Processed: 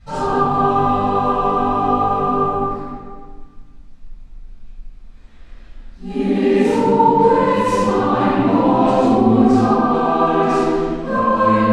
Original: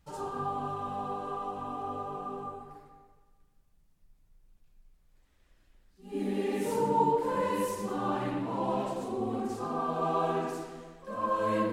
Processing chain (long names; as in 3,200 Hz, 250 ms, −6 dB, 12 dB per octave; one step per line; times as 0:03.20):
low-pass filter 5,800 Hz 12 dB per octave
in parallel at −0.5 dB: compressor whose output falls as the input rises −35 dBFS, ratio −0.5
on the sum: convolution reverb RT60 1.2 s, pre-delay 4 ms, DRR −11.5 dB
level −2 dB